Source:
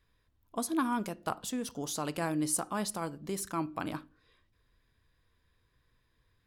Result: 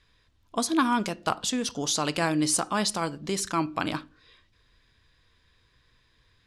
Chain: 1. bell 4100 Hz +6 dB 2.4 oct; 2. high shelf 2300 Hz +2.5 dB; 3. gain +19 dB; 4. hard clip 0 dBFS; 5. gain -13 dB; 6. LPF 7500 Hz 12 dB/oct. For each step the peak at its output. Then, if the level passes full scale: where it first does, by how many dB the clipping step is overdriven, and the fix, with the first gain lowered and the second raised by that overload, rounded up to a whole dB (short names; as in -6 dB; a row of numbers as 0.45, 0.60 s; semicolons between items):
-16.0, -13.5, +5.5, 0.0, -13.0, -12.5 dBFS; step 3, 5.5 dB; step 3 +13 dB, step 5 -7 dB